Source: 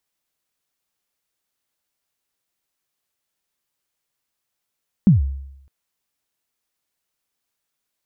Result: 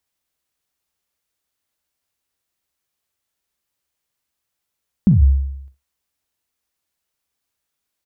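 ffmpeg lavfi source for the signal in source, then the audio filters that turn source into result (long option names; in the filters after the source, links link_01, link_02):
-f lavfi -i "aevalsrc='0.501*pow(10,-3*t/0.82)*sin(2*PI*(220*0.141/log(68/220)*(exp(log(68/220)*min(t,0.141)/0.141)-1)+68*max(t-0.141,0)))':duration=0.61:sample_rate=44100"
-filter_complex "[0:a]equalizer=frequency=69:width=2.8:gain=10.5,asplit=2[link_01][link_02];[link_02]aecho=0:1:43|63:0.237|0.211[link_03];[link_01][link_03]amix=inputs=2:normalize=0"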